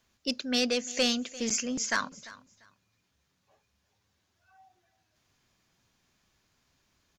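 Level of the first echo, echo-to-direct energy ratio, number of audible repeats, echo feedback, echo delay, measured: −19.0 dB, −19.0 dB, 2, 21%, 345 ms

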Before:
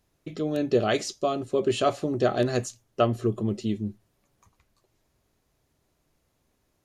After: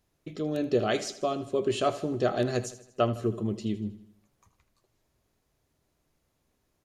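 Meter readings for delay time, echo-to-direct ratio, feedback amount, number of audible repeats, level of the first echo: 79 ms, −13.5 dB, 51%, 4, −15.0 dB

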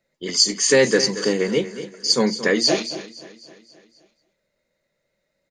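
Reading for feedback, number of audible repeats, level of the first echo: repeats not evenly spaced, 6, −13.0 dB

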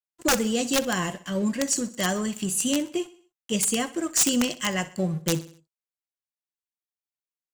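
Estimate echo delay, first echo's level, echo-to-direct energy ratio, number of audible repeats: 63 ms, −17.0 dB, −16.0 dB, 3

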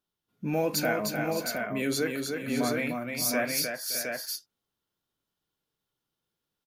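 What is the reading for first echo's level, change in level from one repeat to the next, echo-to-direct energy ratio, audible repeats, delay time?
−4.5 dB, repeats not evenly spaced, −0.5 dB, 4, 306 ms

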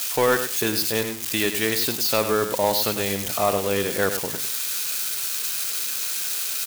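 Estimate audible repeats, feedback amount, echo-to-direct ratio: 2, 15%, −9.0 dB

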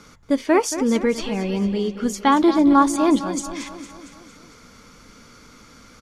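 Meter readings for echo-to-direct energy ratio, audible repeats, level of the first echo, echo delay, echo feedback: −10.5 dB, 5, −12.0 dB, 228 ms, 56%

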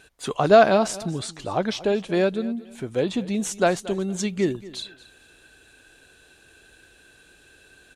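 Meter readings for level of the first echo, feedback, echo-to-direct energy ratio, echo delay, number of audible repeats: −18.5 dB, 24%, −18.0 dB, 230 ms, 2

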